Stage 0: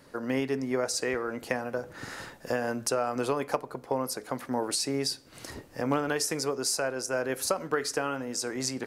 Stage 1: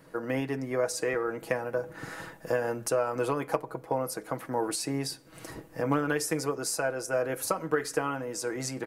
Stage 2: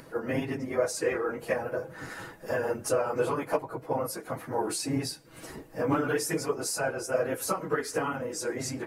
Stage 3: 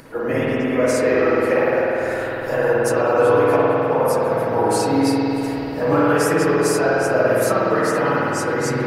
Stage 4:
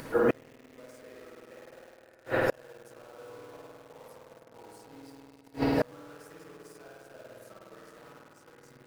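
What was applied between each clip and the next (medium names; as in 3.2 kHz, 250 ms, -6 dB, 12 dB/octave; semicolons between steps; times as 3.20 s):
peaking EQ 4.8 kHz -7.5 dB 1.5 oct; comb 6.2 ms, depth 57%
phase randomisation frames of 50 ms; upward compressor, threshold -44 dBFS
spring tank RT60 3.9 s, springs 51 ms, chirp 55 ms, DRR -7 dB; trim +5 dB
inverted gate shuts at -14 dBFS, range -33 dB; in parallel at -4 dB: bit crusher 8-bit; on the sum: trim -4 dB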